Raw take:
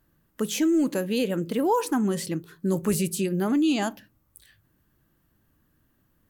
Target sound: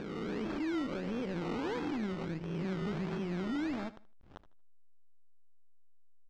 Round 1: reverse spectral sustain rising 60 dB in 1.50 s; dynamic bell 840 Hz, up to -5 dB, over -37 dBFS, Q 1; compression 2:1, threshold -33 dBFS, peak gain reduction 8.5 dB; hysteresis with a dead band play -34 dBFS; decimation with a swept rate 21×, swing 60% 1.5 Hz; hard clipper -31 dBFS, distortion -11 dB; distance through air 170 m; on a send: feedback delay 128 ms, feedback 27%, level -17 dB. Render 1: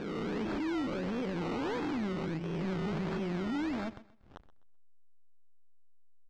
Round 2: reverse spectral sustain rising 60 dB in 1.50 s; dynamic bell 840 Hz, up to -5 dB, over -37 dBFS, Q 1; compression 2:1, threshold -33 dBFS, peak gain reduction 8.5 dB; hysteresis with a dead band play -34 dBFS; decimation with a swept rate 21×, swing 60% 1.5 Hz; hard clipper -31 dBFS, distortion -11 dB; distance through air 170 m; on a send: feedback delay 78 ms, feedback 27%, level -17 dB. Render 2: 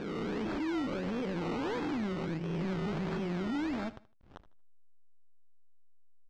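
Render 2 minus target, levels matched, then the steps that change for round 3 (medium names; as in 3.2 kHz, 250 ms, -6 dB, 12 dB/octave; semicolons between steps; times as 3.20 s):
compression: peak gain reduction -3.5 dB
change: compression 2:1, threshold -40 dBFS, peak gain reduction 12 dB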